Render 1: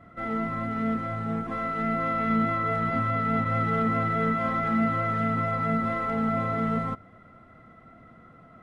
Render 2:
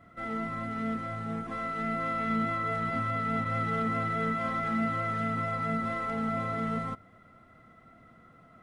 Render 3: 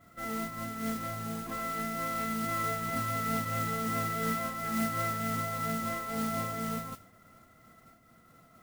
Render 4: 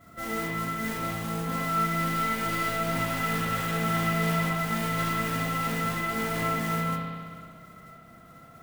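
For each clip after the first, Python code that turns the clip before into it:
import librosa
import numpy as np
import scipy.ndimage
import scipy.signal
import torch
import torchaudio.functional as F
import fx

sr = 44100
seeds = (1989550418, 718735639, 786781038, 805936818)

y1 = fx.high_shelf(x, sr, hz=3100.0, db=9.0)
y1 = y1 * 10.0 ** (-5.5 / 20.0)
y2 = fx.mod_noise(y1, sr, seeds[0], snr_db=11)
y2 = fx.am_noise(y2, sr, seeds[1], hz=5.7, depth_pct=60)
y3 = np.clip(10.0 ** (32.0 / 20.0) * y2, -1.0, 1.0) / 10.0 ** (32.0 / 20.0)
y3 = fx.rev_spring(y3, sr, rt60_s=1.8, pass_ms=(60,), chirp_ms=25, drr_db=-2.0)
y3 = y3 * 10.0 ** (4.5 / 20.0)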